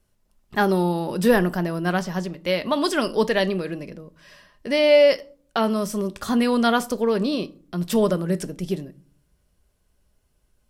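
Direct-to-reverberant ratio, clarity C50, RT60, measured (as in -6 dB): 11.0 dB, 21.5 dB, 0.45 s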